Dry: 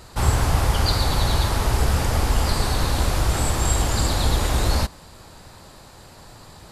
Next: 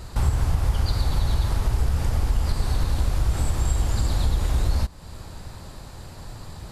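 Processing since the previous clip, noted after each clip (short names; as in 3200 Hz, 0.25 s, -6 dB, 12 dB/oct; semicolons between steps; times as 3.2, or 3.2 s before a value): low shelf 160 Hz +11.5 dB; compressor 2.5:1, threshold -23 dBFS, peak gain reduction 13.5 dB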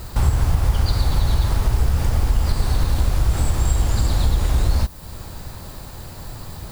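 added noise violet -50 dBFS; gain +4 dB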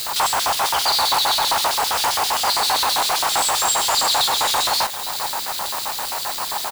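LFO high-pass square 7.6 Hz 850–3700 Hz; in parallel at -3 dB: companded quantiser 2-bit; on the sum: echo 0.427 s -13.5 dB; gain +5 dB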